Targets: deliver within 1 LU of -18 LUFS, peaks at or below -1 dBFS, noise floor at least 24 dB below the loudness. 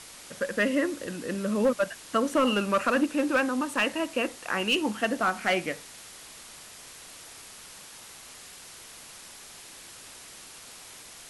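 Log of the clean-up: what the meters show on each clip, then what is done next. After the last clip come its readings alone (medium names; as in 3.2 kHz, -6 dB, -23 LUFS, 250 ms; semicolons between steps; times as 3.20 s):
clipped samples 0.3%; clipping level -17.0 dBFS; noise floor -47 dBFS; noise floor target -51 dBFS; loudness -27.0 LUFS; peak level -17.0 dBFS; loudness target -18.0 LUFS
-> clip repair -17 dBFS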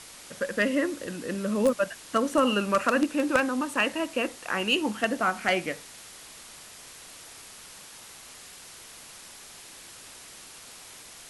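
clipped samples 0.0%; noise floor -47 dBFS; noise floor target -51 dBFS
-> noise reduction 6 dB, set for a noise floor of -47 dBFS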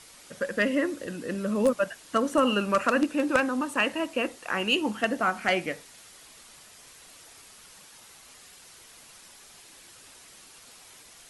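noise floor -52 dBFS; loudness -26.5 LUFS; peak level -8.0 dBFS; loudness target -18.0 LUFS
-> trim +8.5 dB; peak limiter -1 dBFS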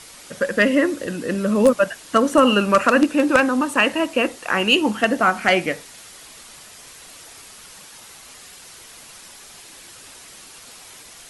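loudness -18.5 LUFS; peak level -1.0 dBFS; noise floor -43 dBFS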